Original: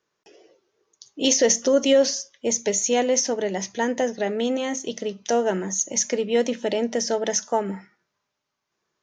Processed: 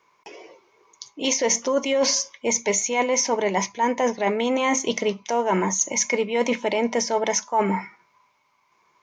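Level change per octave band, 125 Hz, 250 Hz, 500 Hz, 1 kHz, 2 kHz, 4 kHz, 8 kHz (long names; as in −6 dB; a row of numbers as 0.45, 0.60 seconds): can't be measured, −0.5 dB, −1.0 dB, +5.5 dB, +4.5 dB, 0.0 dB, 0.0 dB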